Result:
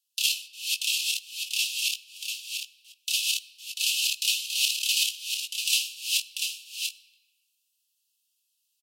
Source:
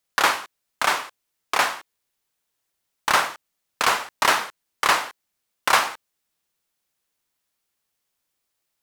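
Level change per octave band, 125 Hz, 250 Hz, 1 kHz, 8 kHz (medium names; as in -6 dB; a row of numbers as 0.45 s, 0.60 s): under -40 dB, under -40 dB, under -40 dB, +4.0 dB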